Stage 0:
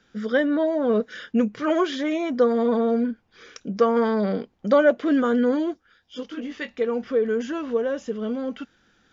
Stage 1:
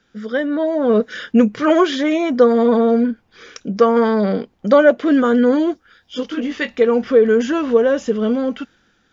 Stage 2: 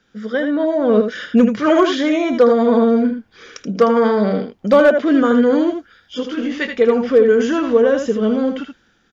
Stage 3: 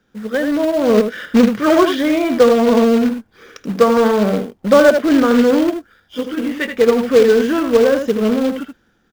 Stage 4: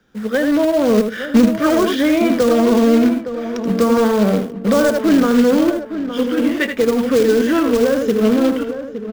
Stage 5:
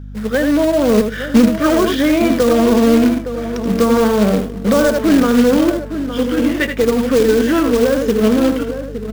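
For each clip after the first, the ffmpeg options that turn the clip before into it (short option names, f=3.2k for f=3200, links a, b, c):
-af "dynaudnorm=f=140:g=11:m=12dB"
-af "aecho=1:1:79:0.447,asoftclip=type=hard:threshold=-4dB"
-filter_complex "[0:a]acrusher=bits=3:mode=log:mix=0:aa=0.000001,asplit=2[a][b];[b]adynamicsmooth=sensitivity=3:basefreq=1.8k,volume=1dB[c];[a][c]amix=inputs=2:normalize=0,volume=-5.5dB"
-filter_complex "[0:a]acrossover=split=220|5500[a][b][c];[b]alimiter=limit=-11.5dB:level=0:latency=1:release=278[d];[a][d][c]amix=inputs=3:normalize=0,asplit=2[e][f];[f]adelay=864,lowpass=f=1.8k:p=1,volume=-10dB,asplit=2[g][h];[h]adelay=864,lowpass=f=1.8k:p=1,volume=0.28,asplit=2[i][j];[j]adelay=864,lowpass=f=1.8k:p=1,volume=0.28[k];[e][g][i][k]amix=inputs=4:normalize=0,volume=3dB"
-filter_complex "[0:a]asplit=2[a][b];[b]acrusher=bits=2:mode=log:mix=0:aa=0.000001,volume=-6dB[c];[a][c]amix=inputs=2:normalize=0,aeval=exprs='val(0)+0.0447*(sin(2*PI*50*n/s)+sin(2*PI*2*50*n/s)/2+sin(2*PI*3*50*n/s)/3+sin(2*PI*4*50*n/s)/4+sin(2*PI*5*50*n/s)/5)':c=same,volume=-2.5dB"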